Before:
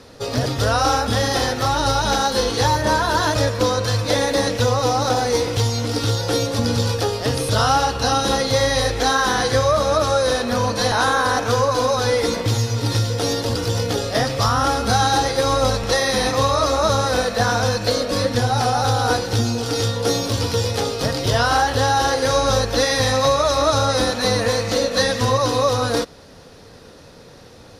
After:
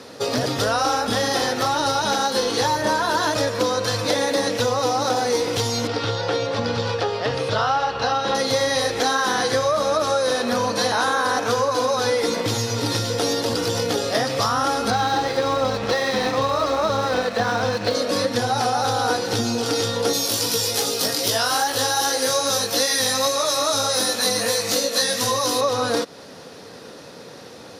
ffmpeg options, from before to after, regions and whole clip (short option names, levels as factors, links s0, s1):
-filter_complex "[0:a]asettb=1/sr,asplit=3[s0][s1][s2];[s0]atrim=end=5.874[s3];[s1]atrim=start=5.87:end=8.35,asetpts=PTS-STARTPTS,afade=t=in:d=0.004:c=qsin,afade=t=out:st=2.476:d=0.004:c=qsin,lowpass=3300,equalizer=f=270:w=1.6:g=-8.5[s4];[s2]atrim=start=8.346[s5];[s3][s4]acrossfade=d=0.004:c1=hsin:c2=qsin[s6];[s6][s5]acrossfade=d=0.004:c1=qsin:c2=hsin,asettb=1/sr,asplit=3[s7][s8][s9];[s7]atrim=end=14.904[s10];[s8]atrim=start=14.9:end=17.95,asetpts=PTS-STARTPTS,afade=t=in:d=0.004:c=qsin,afade=t=out:st=3.046:d=0.004:c=qsin,lowpass=4200,lowshelf=f=120:g=6.5,aeval=exprs='sgn(val(0))*max(abs(val(0))-0.02,0)':c=same[s11];[s9]atrim=start=17.946[s12];[s10][s11]acrossfade=d=0.004:c1=hsin:c2=qsin[s13];[s13][s12]acrossfade=d=0.004:c1=qsin:c2=hsin,asettb=1/sr,asplit=3[s14][s15][s16];[s14]atrim=end=20.134[s17];[s15]atrim=start=20.13:end=25.61,asetpts=PTS-STARTPTS,afade=t=in:d=0.004:c=qsin,afade=t=out:st=5.476:d=0.004:c=qsin,aemphasis=mode=production:type=75fm,flanger=delay=17.5:depth=2.7:speed=2.5,highpass=100[s18];[s16]atrim=start=25.606[s19];[s17][s18]acrossfade=d=0.004:c1=hsin:c2=qsin[s20];[s20][s19]acrossfade=d=0.004:c1=qsin:c2=hsin,highpass=180,acompressor=threshold=0.0562:ratio=2.5,volume=1.68"